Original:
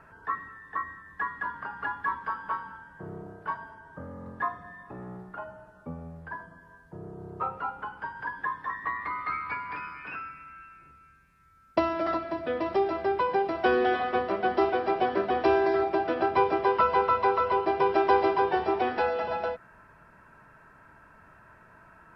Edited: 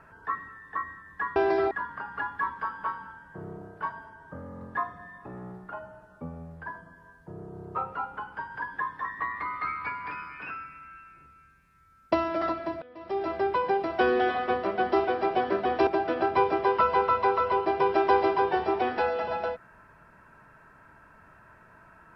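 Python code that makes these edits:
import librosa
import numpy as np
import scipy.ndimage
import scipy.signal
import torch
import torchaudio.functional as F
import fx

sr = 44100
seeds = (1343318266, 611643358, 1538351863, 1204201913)

y = fx.edit(x, sr, fx.fade_in_from(start_s=12.47, length_s=0.46, curve='qua', floor_db=-23.0),
    fx.move(start_s=15.52, length_s=0.35, to_s=1.36), tone=tone)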